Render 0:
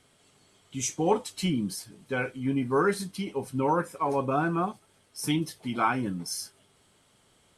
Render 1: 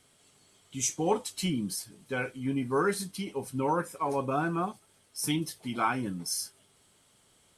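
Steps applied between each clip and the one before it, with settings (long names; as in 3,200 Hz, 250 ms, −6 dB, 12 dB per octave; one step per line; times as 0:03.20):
high-shelf EQ 4,900 Hz +7 dB
level −3 dB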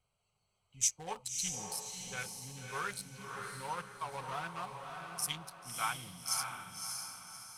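adaptive Wiener filter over 25 samples
guitar amp tone stack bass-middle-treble 10-0-10
feedback delay with all-pass diffusion 591 ms, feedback 41%, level −4 dB
level +1.5 dB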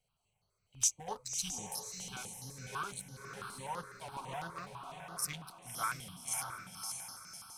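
step-sequenced phaser 12 Hz 310–8,000 Hz
level +1.5 dB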